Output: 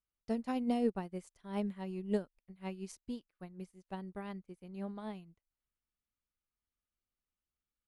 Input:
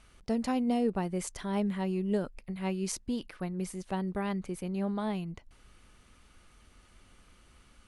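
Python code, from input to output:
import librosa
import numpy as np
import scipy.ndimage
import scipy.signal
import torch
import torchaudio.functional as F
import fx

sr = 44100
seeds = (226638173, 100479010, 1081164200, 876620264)

y = fx.upward_expand(x, sr, threshold_db=-50.0, expansion=2.5)
y = F.gain(torch.from_numpy(y), -1.5).numpy()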